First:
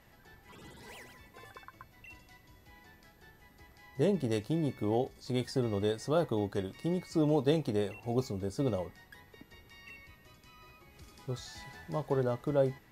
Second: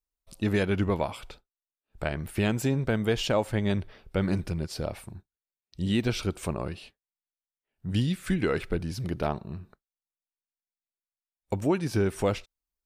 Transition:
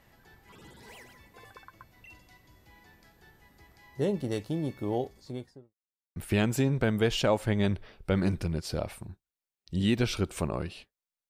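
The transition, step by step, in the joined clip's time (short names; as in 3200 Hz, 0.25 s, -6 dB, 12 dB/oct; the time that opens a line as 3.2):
first
5–5.74 studio fade out
5.74–6.16 mute
6.16 switch to second from 2.22 s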